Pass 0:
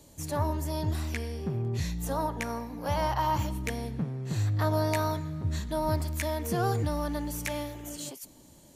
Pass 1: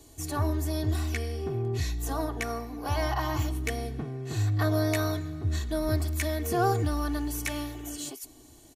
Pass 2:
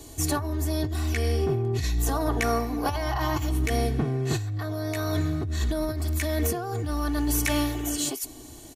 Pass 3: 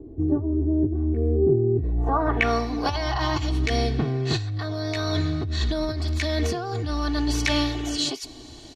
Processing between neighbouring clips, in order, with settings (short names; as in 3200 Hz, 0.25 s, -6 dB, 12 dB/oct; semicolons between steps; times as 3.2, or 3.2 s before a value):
comb 2.7 ms, depth 80%
negative-ratio compressor -32 dBFS, ratio -1; gain +6 dB
low-pass sweep 360 Hz -> 4400 Hz, 1.8–2.57; gain +1.5 dB